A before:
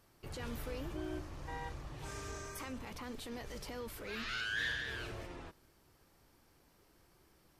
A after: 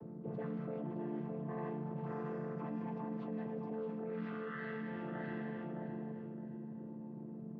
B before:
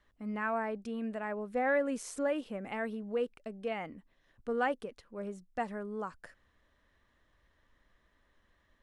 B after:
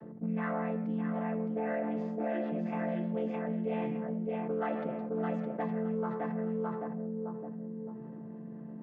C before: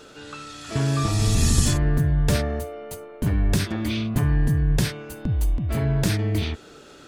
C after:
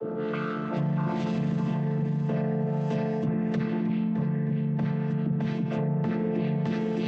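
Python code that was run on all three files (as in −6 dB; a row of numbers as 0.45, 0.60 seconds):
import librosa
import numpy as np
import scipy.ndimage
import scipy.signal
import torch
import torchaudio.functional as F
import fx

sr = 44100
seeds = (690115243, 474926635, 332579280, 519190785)

y = fx.chord_vocoder(x, sr, chord='minor triad', root=50)
y = fx.dynamic_eq(y, sr, hz=200.0, q=1.2, threshold_db=-37.0, ratio=4.0, max_db=-5)
y = fx.echo_feedback(y, sr, ms=614, feedback_pct=27, wet_db=-6.5)
y = fx.rev_schroeder(y, sr, rt60_s=0.88, comb_ms=25, drr_db=10.0)
y = 10.0 ** (-16.5 / 20.0) * np.tanh(y / 10.0 ** (-16.5 / 20.0))
y = fx.env_lowpass_down(y, sr, base_hz=2000.0, full_db=-26.0)
y = fx.low_shelf(y, sr, hz=330.0, db=-3.0)
y = fx.rider(y, sr, range_db=5, speed_s=0.5)
y = fx.env_lowpass(y, sr, base_hz=380.0, full_db=-30.0)
y = fx.env_flatten(y, sr, amount_pct=70)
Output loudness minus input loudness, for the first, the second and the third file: −0.5, +1.0, −4.5 LU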